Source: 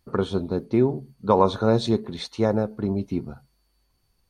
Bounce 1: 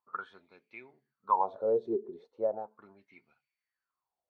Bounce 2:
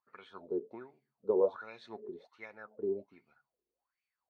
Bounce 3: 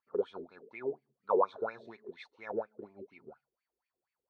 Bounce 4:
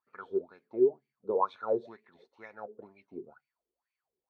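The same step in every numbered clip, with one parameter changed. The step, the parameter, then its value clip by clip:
wah, rate: 0.37, 1.3, 4.2, 2.1 Hz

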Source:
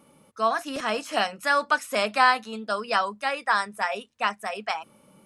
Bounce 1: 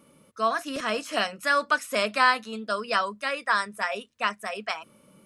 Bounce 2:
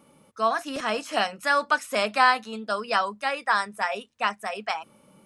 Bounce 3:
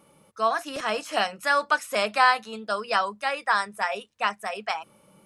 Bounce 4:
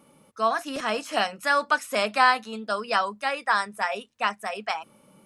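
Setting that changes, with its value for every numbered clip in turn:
bell, frequency: 820, 14000, 250, 75 Hz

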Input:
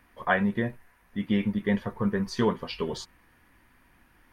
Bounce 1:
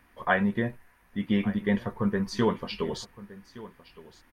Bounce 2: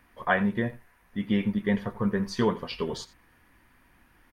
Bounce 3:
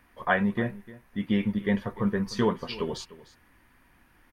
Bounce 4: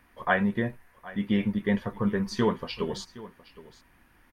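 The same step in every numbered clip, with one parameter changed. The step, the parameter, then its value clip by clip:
echo, time: 1166, 86, 301, 766 ms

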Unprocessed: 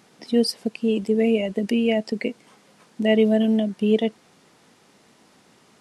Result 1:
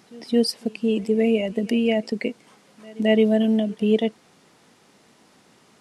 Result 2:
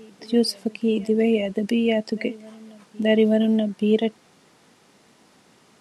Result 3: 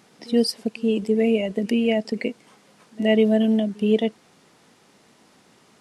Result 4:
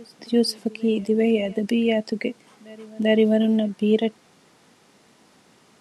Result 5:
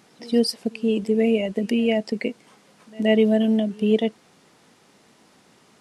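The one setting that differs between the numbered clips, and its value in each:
reverse echo, time: 217, 880, 73, 392, 124 ms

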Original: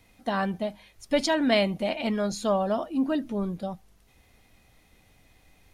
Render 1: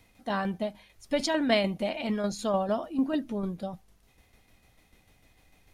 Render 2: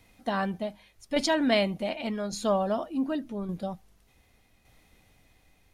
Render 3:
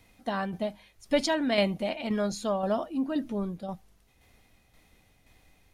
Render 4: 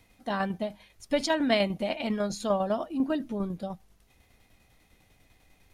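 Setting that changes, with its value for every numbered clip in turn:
tremolo, rate: 6.7, 0.86, 1.9, 10 Hz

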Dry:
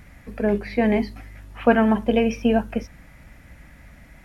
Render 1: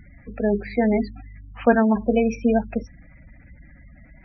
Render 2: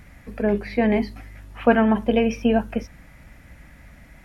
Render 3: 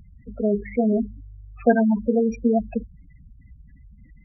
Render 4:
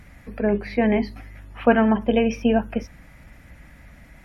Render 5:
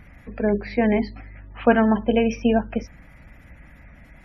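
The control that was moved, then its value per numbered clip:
spectral gate, under each frame's peak: -20, -60, -10, -45, -35 dB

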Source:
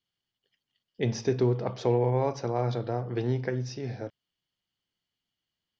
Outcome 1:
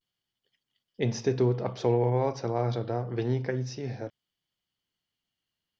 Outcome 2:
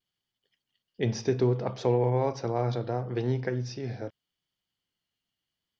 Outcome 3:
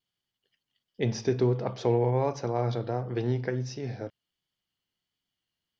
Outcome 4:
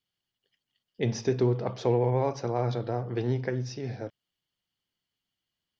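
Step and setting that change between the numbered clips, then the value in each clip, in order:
vibrato, rate: 0.31, 0.73, 1.4, 13 Hz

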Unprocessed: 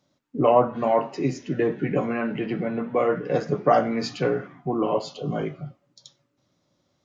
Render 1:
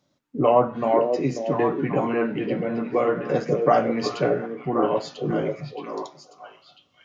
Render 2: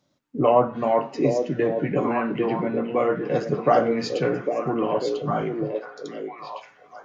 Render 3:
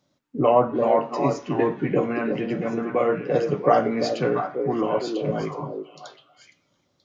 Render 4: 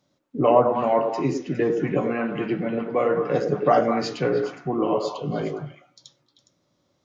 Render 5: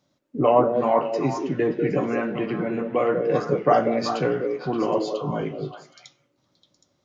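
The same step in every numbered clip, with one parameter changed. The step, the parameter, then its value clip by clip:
delay with a stepping band-pass, time: 0.539, 0.802, 0.341, 0.103, 0.192 s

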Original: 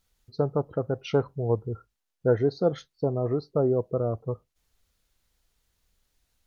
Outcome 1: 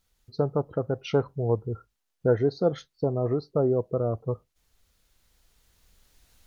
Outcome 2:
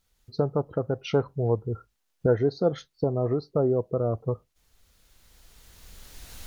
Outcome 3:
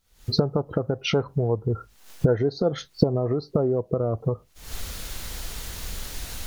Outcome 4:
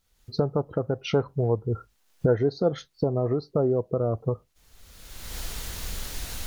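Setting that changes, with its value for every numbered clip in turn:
recorder AGC, rising by: 5, 13, 83, 33 dB/s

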